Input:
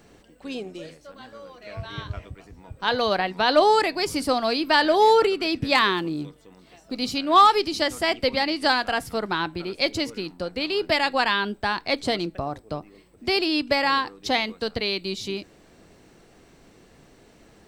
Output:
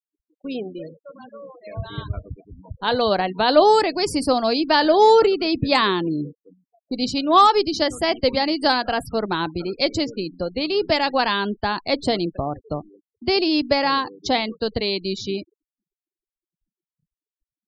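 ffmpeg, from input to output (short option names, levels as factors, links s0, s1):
-af "afftfilt=real='re*gte(hypot(re,im),0.0178)':imag='im*gte(hypot(re,im),0.0178)':win_size=1024:overlap=0.75,agate=range=0.0224:threshold=0.00398:ratio=3:detection=peak,equalizer=f=2000:w=0.73:g=-7,volume=1.78"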